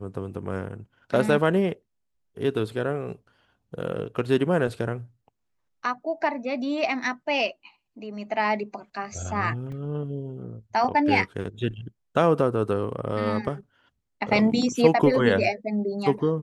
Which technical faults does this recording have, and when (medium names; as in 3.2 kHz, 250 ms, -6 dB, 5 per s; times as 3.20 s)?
9.72 s: dropout 3.7 ms